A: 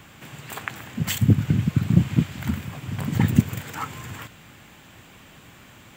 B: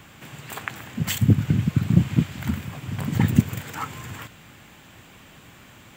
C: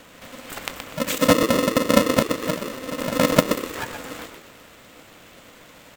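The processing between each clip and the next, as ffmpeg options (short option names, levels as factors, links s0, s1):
-af anull
-filter_complex "[0:a]asplit=5[s0][s1][s2][s3][s4];[s1]adelay=123,afreqshift=-44,volume=0.447[s5];[s2]adelay=246,afreqshift=-88,volume=0.157[s6];[s3]adelay=369,afreqshift=-132,volume=0.055[s7];[s4]adelay=492,afreqshift=-176,volume=0.0191[s8];[s0][s5][s6][s7][s8]amix=inputs=5:normalize=0,aeval=exprs='val(0)*sgn(sin(2*PI*390*n/s))':c=same"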